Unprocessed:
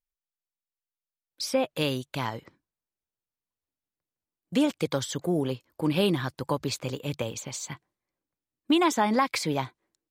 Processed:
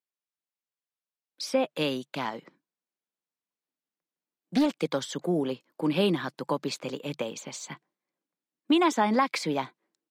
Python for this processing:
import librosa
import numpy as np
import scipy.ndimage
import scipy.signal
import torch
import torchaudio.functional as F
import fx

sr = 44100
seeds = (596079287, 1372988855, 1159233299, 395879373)

y = scipy.signal.sosfilt(scipy.signal.butter(6, 160.0, 'highpass', fs=sr, output='sos'), x)
y = fx.high_shelf(y, sr, hz=8100.0, db=-10.5)
y = fx.doppler_dist(y, sr, depth_ms=0.32, at=(2.08, 4.66))